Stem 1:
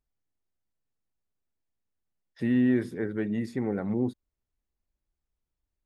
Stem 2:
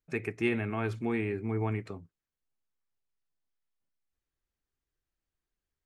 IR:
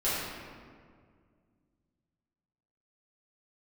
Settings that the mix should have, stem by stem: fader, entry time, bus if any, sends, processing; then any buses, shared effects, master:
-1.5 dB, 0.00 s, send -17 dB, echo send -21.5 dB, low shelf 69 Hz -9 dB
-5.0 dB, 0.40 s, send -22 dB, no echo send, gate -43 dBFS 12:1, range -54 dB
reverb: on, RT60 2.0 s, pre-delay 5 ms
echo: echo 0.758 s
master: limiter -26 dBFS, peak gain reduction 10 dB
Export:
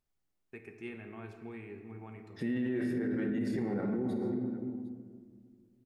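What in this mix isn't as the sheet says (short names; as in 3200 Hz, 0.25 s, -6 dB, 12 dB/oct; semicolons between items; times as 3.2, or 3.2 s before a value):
stem 2 -5.0 dB -> -16.5 dB; reverb return +8.0 dB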